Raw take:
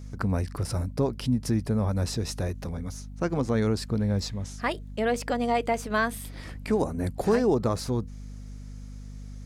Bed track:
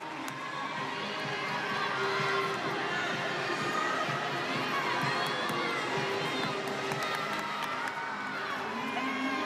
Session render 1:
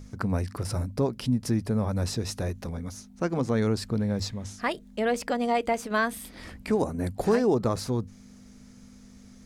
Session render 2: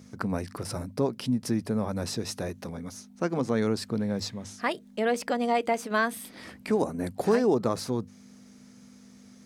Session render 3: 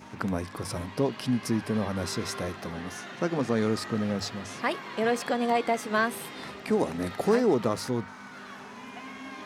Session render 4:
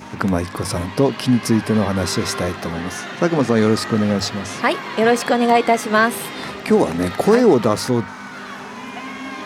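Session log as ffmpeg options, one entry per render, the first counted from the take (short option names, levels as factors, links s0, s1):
-af "bandreject=f=50:t=h:w=6,bandreject=f=100:t=h:w=6,bandreject=f=150:t=h:w=6"
-af "highpass=150,bandreject=f=7100:w=26"
-filter_complex "[1:a]volume=0.335[s0];[0:a][s0]amix=inputs=2:normalize=0"
-af "volume=3.55,alimiter=limit=0.708:level=0:latency=1"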